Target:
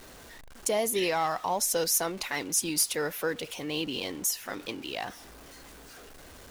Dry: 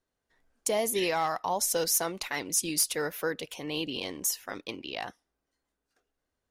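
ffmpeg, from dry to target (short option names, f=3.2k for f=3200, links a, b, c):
-af "aeval=exprs='val(0)+0.5*0.0075*sgn(val(0))':c=same"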